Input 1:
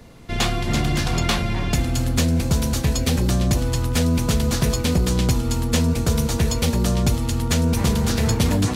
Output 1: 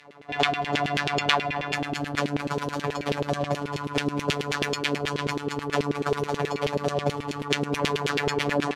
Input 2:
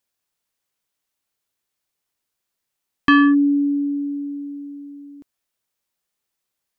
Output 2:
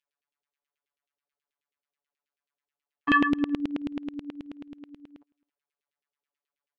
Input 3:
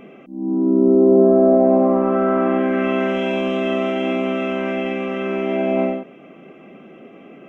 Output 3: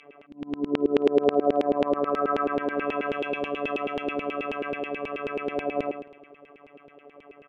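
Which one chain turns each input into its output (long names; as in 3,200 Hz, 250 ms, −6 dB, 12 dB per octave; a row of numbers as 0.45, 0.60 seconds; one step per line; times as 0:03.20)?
phases set to zero 145 Hz
auto-filter band-pass saw down 9.3 Hz 360–3,000 Hz
slap from a distant wall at 46 metres, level −28 dB
loudness normalisation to −27 LKFS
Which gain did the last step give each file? +10.0, +1.5, +3.0 decibels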